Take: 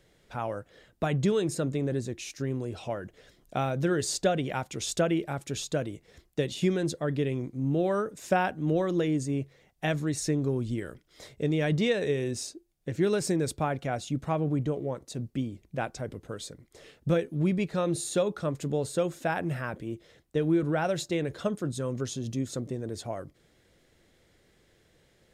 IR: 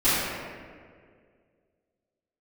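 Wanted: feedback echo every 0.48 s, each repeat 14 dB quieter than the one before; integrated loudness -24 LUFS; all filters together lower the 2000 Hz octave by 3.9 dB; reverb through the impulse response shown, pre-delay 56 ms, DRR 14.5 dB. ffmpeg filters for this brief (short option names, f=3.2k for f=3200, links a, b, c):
-filter_complex "[0:a]equalizer=f=2k:t=o:g=-5.5,aecho=1:1:480|960:0.2|0.0399,asplit=2[a][b];[1:a]atrim=start_sample=2205,adelay=56[c];[b][c]afir=irnorm=-1:irlink=0,volume=-32dB[d];[a][d]amix=inputs=2:normalize=0,volume=6dB"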